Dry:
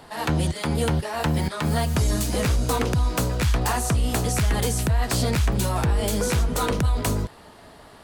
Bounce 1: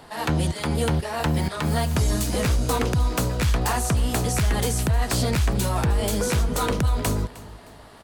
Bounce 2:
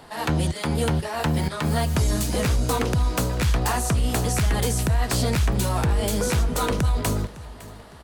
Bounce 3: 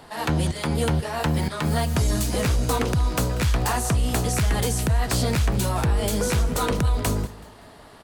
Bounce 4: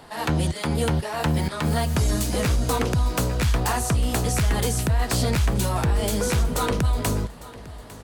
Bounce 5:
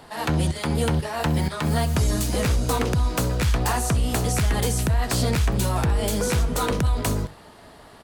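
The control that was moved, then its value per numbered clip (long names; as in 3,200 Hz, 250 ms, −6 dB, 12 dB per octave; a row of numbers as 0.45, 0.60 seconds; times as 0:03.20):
repeating echo, delay time: 309, 558, 189, 852, 65 milliseconds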